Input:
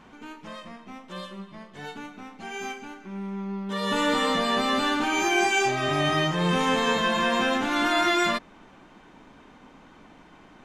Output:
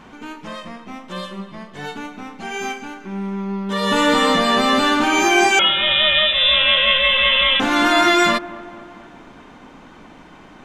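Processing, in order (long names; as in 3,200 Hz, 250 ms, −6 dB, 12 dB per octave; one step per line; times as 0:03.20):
0:05.59–0:07.60: voice inversion scrambler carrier 3,700 Hz
on a send: delay with a low-pass on its return 227 ms, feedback 56%, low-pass 1,500 Hz, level −17 dB
on the sum: level +8 dB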